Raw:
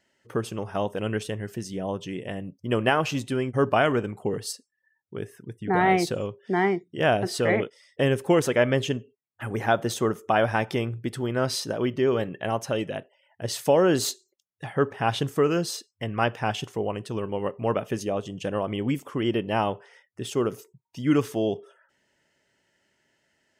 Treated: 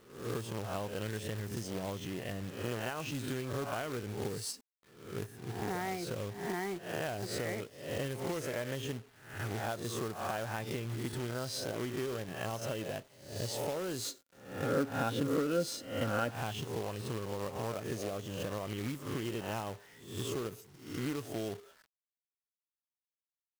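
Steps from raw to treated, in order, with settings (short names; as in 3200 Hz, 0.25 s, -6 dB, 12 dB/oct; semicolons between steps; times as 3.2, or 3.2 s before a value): spectral swells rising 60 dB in 0.59 s; dynamic EQ 100 Hz, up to +6 dB, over -45 dBFS, Q 1.6; compressor 10:1, threshold -26 dBFS, peak gain reduction 13 dB; companded quantiser 4-bit; 14.05–16.31 small resonant body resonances 270/520/1400 Hz, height 13 dB, ringing for 45 ms; gain -7.5 dB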